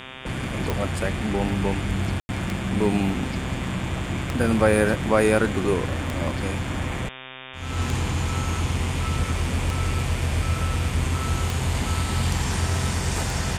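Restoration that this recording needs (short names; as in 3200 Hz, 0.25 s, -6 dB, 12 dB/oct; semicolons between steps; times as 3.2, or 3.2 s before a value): de-click; de-hum 130.2 Hz, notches 28; notch 2400 Hz, Q 30; room tone fill 2.2–2.29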